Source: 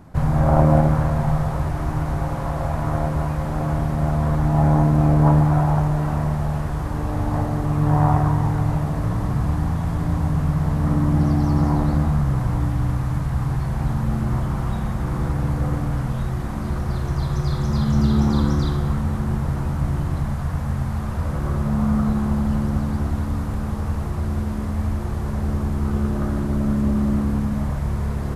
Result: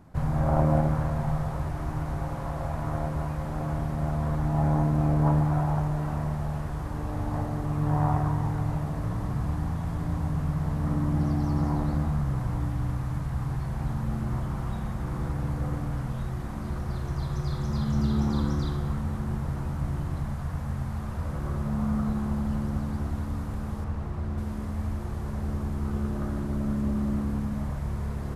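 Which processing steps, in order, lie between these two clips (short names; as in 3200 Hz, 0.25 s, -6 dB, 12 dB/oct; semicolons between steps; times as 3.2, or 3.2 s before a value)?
23.84–24.38 high shelf 6000 Hz -12 dB; gain -7.5 dB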